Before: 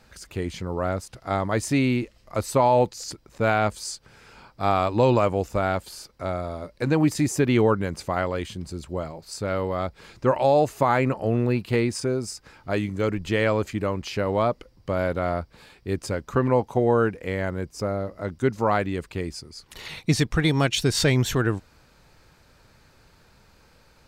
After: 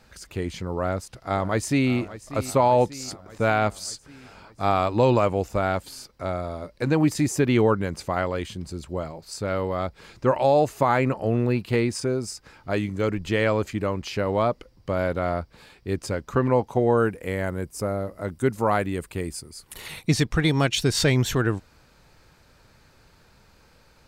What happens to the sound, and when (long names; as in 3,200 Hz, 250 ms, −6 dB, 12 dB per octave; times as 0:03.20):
0:00.76–0:01.91: delay throw 590 ms, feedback 65%, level −15.5 dB
0:16.97–0:20.07: high shelf with overshoot 7,300 Hz +8.5 dB, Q 1.5